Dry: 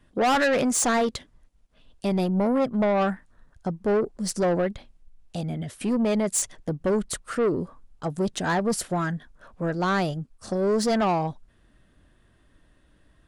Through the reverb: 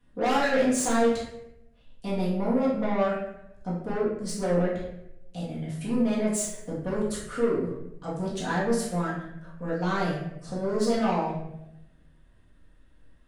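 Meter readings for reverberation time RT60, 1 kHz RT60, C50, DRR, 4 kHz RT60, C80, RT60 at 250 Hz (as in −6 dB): 0.80 s, 0.70 s, 2.5 dB, −7.5 dB, 0.55 s, 6.0 dB, 1.0 s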